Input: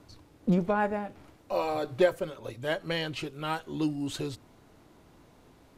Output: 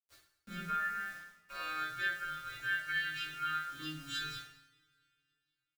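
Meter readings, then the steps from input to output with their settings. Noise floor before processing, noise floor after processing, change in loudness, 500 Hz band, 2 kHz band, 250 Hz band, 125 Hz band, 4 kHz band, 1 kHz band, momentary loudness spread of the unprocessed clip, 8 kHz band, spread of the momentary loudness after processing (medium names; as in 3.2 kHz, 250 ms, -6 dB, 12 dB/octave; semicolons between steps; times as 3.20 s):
-59 dBFS, under -85 dBFS, -6.5 dB, -29.0 dB, +3.0 dB, -20.0 dB, -17.0 dB, -2.0 dB, -5.5 dB, 11 LU, -4.0 dB, 12 LU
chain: partials quantised in pitch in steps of 2 st; gate -45 dBFS, range -10 dB; FFT filter 100 Hz 0 dB, 240 Hz -18 dB, 900 Hz -27 dB, 1.4 kHz +12 dB, 11 kHz -18 dB; compression 5:1, threshold -33 dBFS, peak gain reduction 12.5 dB; bit crusher 9-bit; peaking EQ 92 Hz -13 dB 0.68 oct; doubling 13 ms -12.5 dB; on a send: delay 208 ms -22.5 dB; on the sum: two-slope reverb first 0.58 s, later 2.8 s, from -26 dB, DRR -6 dB; trim -8 dB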